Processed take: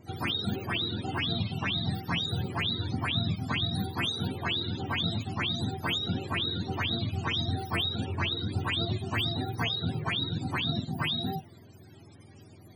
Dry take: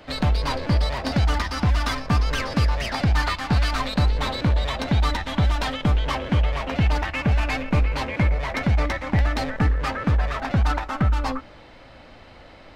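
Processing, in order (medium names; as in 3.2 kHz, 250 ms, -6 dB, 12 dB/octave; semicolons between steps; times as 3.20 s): spectrum inverted on a logarithmic axis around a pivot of 450 Hz; trim -5.5 dB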